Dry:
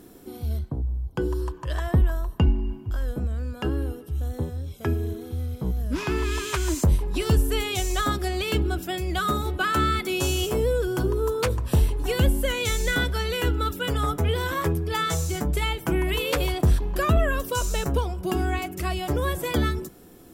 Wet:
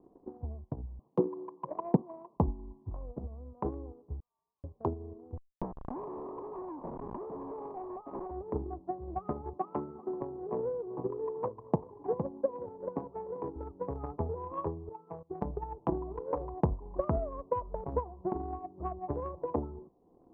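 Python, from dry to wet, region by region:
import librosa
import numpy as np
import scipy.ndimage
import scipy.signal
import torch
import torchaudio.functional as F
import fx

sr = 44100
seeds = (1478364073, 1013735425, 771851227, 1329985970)

y = fx.chain(x, sr, fx.cvsd(bps=16000),
    fx.steep_highpass(hz=160.0, slope=36),
    fx.low_shelf(hz=480.0, db=8.0), at=(0.99, 2.37))
y = fx.chain(y, sr, fx.differentiator(),
    fx.freq_invert(carrier_hz=2900), at=(4.2, 4.64))
y = fx.chain(y, sr, fx.highpass(hz=210.0, slope=24),
    fx.schmitt(flips_db=-35.0),
    fx.env_flatten(amount_pct=70), at=(5.37, 8.31))
y = fx.chain(y, sr, fx.highpass(hz=120.0, slope=24),
    fx.echo_single(ms=387, db=-13.5), at=(9.53, 13.56))
y = fx.chain(y, sr, fx.highpass(hz=130.0, slope=24),
    fx.level_steps(step_db=16), at=(14.89, 15.42))
y = scipy.signal.sosfilt(scipy.signal.butter(16, 1100.0, 'lowpass', fs=sr, output='sos'), y)
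y = fx.low_shelf(y, sr, hz=390.0, db=-11.0)
y = fx.transient(y, sr, attack_db=11, sustain_db=-5)
y = y * librosa.db_to_amplitude(-6.5)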